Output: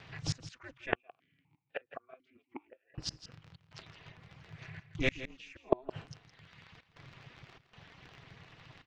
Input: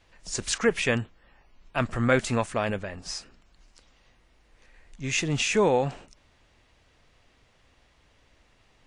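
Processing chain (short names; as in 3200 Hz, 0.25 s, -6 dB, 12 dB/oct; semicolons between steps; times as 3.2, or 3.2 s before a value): reverb removal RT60 1.1 s; tilt shelf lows -4 dB; notch 730 Hz, Q 15; comb 5.5 ms, depth 80%; ring modulator 130 Hz; crackle 38/s -45 dBFS; step gate "xxxxx.xxxx.xx" 97 bpm -24 dB; flipped gate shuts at -23 dBFS, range -34 dB; air absorption 210 m; echo 0.165 s -13.5 dB; 0.95–2.98 vowel sequencer 4 Hz; gain +11.5 dB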